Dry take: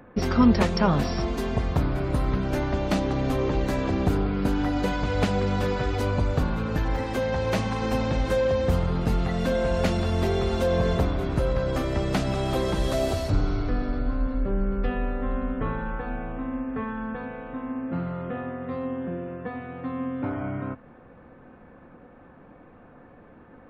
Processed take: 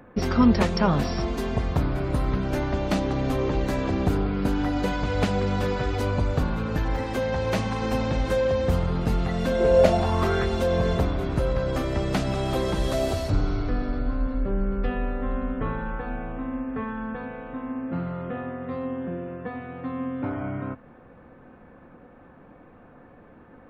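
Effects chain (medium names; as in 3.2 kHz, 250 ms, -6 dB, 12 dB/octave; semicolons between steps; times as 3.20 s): 9.59–10.45 s: peaking EQ 370 Hz -> 1.7 kHz +14 dB 0.55 oct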